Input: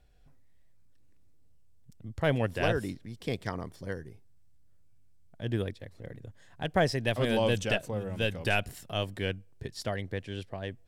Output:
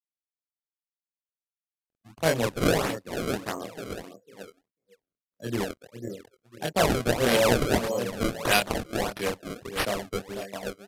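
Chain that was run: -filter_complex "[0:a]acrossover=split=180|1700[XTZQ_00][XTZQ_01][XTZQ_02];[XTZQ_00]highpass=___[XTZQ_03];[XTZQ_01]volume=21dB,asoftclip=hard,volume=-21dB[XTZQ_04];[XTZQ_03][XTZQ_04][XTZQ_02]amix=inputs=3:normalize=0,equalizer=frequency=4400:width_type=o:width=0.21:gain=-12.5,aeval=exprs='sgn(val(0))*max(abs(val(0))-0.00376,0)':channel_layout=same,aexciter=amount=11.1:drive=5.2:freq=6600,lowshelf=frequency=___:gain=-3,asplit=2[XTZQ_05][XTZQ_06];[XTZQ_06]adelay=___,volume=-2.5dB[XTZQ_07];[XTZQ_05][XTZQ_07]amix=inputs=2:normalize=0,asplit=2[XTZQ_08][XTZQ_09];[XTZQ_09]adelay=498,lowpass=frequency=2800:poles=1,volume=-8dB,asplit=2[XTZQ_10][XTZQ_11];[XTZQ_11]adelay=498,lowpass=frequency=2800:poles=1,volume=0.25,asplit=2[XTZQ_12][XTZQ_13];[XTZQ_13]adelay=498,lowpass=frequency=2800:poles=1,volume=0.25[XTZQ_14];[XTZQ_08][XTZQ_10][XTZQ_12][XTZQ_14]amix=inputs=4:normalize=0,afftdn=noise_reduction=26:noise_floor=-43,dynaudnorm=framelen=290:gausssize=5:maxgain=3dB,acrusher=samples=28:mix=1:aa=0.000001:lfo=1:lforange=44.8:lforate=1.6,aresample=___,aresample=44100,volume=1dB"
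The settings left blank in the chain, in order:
140, 270, 25, 32000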